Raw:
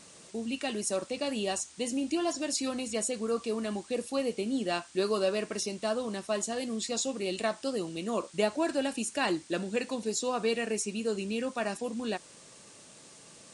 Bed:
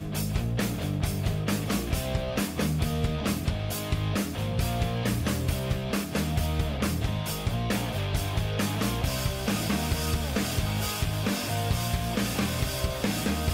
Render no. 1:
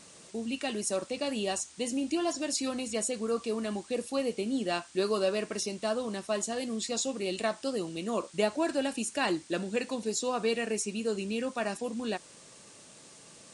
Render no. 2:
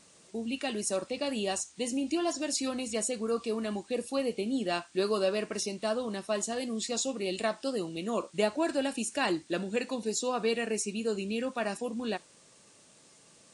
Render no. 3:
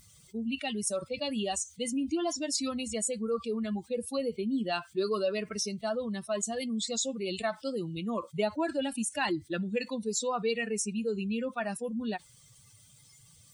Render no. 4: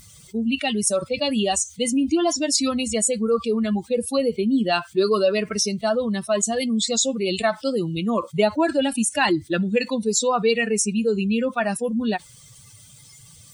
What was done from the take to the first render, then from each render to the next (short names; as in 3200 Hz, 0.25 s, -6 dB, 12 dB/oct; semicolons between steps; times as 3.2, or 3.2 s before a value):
nothing audible
noise print and reduce 6 dB
per-bin expansion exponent 2; fast leveller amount 50%
gain +10.5 dB